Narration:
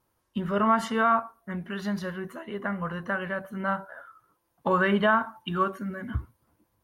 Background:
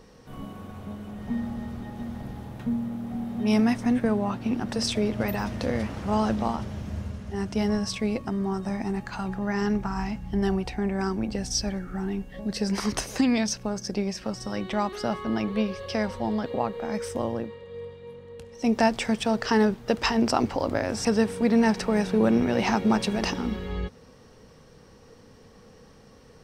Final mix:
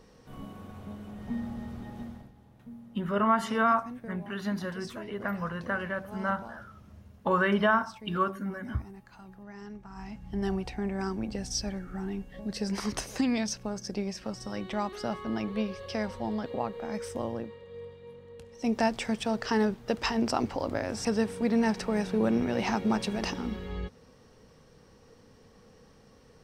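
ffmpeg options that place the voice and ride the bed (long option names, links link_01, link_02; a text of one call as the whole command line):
ffmpeg -i stem1.wav -i stem2.wav -filter_complex "[0:a]adelay=2600,volume=-2dB[link_01];[1:a]volume=9dB,afade=type=out:start_time=1.99:duration=0.32:silence=0.199526,afade=type=in:start_time=9.85:duration=0.66:silence=0.211349[link_02];[link_01][link_02]amix=inputs=2:normalize=0" out.wav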